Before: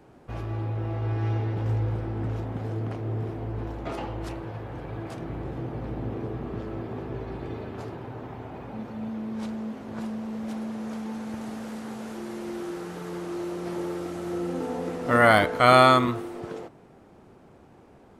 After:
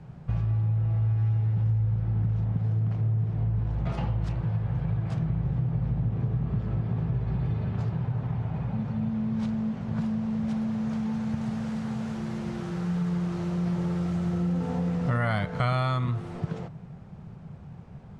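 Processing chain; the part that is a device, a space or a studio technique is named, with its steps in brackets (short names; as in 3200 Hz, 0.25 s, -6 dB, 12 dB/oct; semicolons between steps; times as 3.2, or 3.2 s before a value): jukebox (LPF 6600 Hz 12 dB/oct; resonant low shelf 220 Hz +10.5 dB, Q 3; compressor 5:1, threshold -24 dBFS, peak gain reduction 14 dB)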